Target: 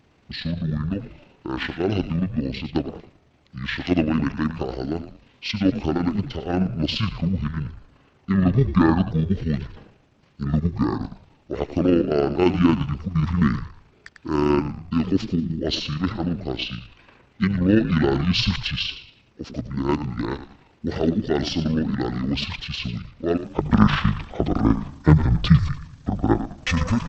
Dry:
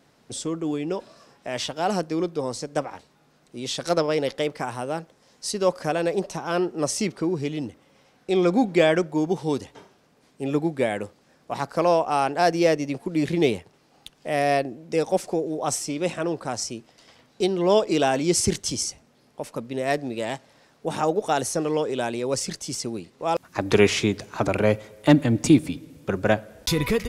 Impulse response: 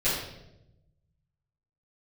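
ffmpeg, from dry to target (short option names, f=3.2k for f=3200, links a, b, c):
-filter_complex "[0:a]asplit=5[a][b][c][d][e];[b]adelay=99,afreqshift=-130,volume=-11dB[f];[c]adelay=198,afreqshift=-260,volume=-20.4dB[g];[d]adelay=297,afreqshift=-390,volume=-29.7dB[h];[e]adelay=396,afreqshift=-520,volume=-39.1dB[i];[a][f][g][h][i]amix=inputs=5:normalize=0,tremolo=f=26:d=0.4,asetrate=22696,aresample=44100,atempo=1.94306,volume=3.5dB"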